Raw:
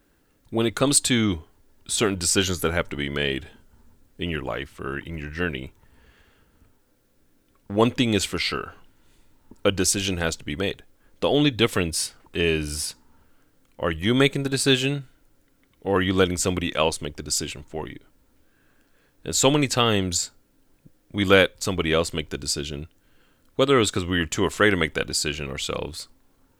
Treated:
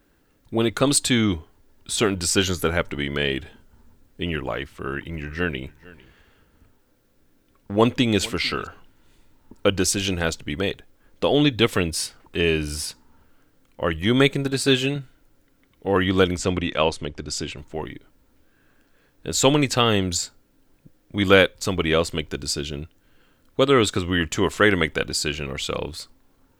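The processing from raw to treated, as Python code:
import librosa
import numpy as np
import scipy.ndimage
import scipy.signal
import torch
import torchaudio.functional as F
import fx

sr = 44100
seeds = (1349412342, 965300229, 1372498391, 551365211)

y = fx.echo_single(x, sr, ms=451, db=-21.5, at=(4.76, 8.67))
y = fx.notch_comb(y, sr, f0_hz=160.0, at=(14.5, 14.96))
y = fx.air_absorb(y, sr, metres=59.0, at=(16.37, 17.58))
y = fx.peak_eq(y, sr, hz=9600.0, db=-3.5, octaves=1.3)
y = y * librosa.db_to_amplitude(1.5)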